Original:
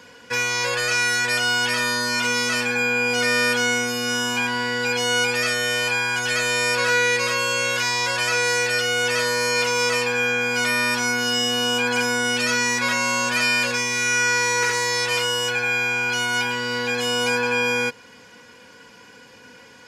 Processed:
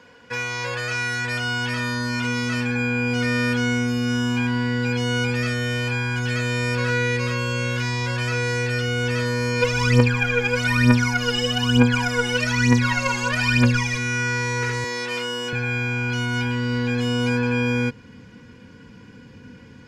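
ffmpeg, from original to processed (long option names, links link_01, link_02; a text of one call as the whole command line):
ffmpeg -i in.wav -filter_complex "[0:a]asplit=3[link_01][link_02][link_03];[link_01]afade=type=out:start_time=9.61:duration=0.02[link_04];[link_02]aphaser=in_gain=1:out_gain=1:delay=2.5:decay=0.77:speed=1.1:type=triangular,afade=type=in:start_time=9.61:duration=0.02,afade=type=out:start_time=13.97:duration=0.02[link_05];[link_03]afade=type=in:start_time=13.97:duration=0.02[link_06];[link_04][link_05][link_06]amix=inputs=3:normalize=0,asettb=1/sr,asplit=3[link_07][link_08][link_09];[link_07]atrim=end=14.844[link_10];[link_08]atrim=start=14.84:end=15.53,asetpts=PTS-STARTPTS,afade=type=in:duration=0.004:curve=qsin,afade=type=out:start_time=0.686:duration=0.004:curve=qsin,highpass=frequency=200:width=0.5412,highpass=frequency=200:width=1.3066[link_11];[link_09]atrim=start=15.526[link_12];[link_10][link_11]acrossfade=duration=0.004:curve1=hsin:curve2=qsin[link_13];[link_13][link_12]acrossfade=duration=0.004:curve1=qsin:curve2=hsin,lowpass=frequency=2500:poles=1,asubboost=boost=9:cutoff=220,volume=-2dB" out.wav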